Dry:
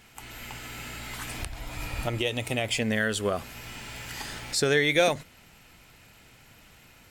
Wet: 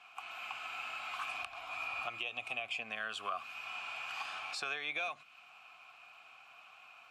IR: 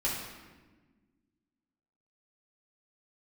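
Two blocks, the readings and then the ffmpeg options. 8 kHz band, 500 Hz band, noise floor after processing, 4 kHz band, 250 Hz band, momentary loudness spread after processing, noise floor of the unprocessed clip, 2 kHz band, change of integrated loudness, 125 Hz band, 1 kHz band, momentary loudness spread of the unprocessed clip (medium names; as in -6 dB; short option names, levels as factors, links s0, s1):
-19.5 dB, -21.5 dB, -59 dBFS, -11.0 dB, -27.5 dB, 18 LU, -55 dBFS, -8.0 dB, -11.0 dB, -32.0 dB, -5.0 dB, 17 LU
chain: -filter_complex "[0:a]asplit=3[s0][s1][s2];[s0]bandpass=f=730:t=q:w=8,volume=1[s3];[s1]bandpass=f=1090:t=q:w=8,volume=0.501[s4];[s2]bandpass=f=2440:t=q:w=8,volume=0.355[s5];[s3][s4][s5]amix=inputs=3:normalize=0,acrossover=split=400|1200[s6][s7][s8];[s6]acompressor=threshold=0.00251:ratio=4[s9];[s7]acompressor=threshold=0.00178:ratio=4[s10];[s8]acompressor=threshold=0.00282:ratio=4[s11];[s9][s10][s11]amix=inputs=3:normalize=0,lowshelf=f=780:t=q:w=1.5:g=-12,volume=4.22"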